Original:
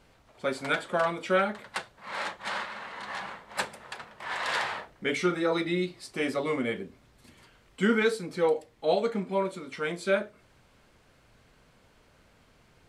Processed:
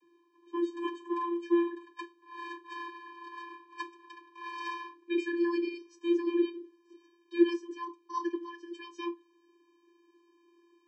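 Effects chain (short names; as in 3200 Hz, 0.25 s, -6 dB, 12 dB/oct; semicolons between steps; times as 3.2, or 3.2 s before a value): speed glide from 82% -> 155%; vocoder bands 32, square 343 Hz; gain -2.5 dB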